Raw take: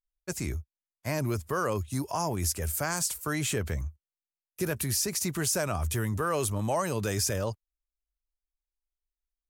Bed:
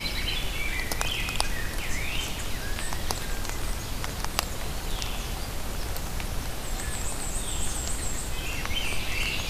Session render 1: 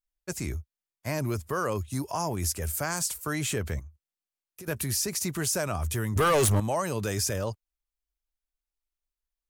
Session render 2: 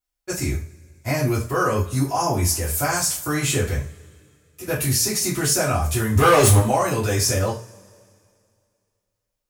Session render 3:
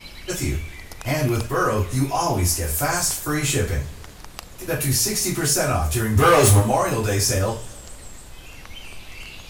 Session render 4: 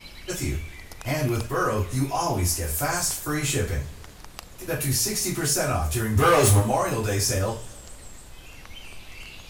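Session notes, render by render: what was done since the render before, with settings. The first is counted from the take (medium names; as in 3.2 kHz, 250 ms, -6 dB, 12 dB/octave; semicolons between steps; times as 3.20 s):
3.79–4.68 s: compression 4:1, threshold -43 dBFS; 6.16–6.60 s: waveshaping leveller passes 3
two-slope reverb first 0.34 s, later 2.4 s, from -27 dB, DRR -8 dB
add bed -9.5 dB
trim -3.5 dB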